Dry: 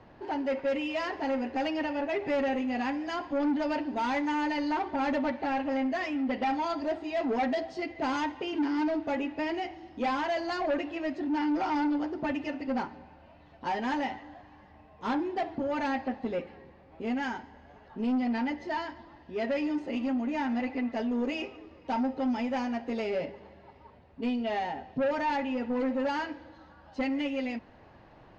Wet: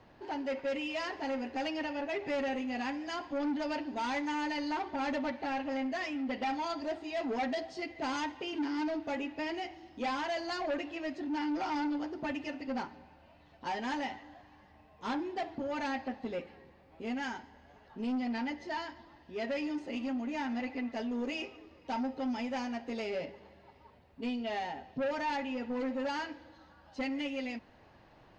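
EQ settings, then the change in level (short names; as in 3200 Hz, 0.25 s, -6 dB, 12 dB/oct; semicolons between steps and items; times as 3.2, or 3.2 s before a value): high shelf 3200 Hz +9 dB; -5.5 dB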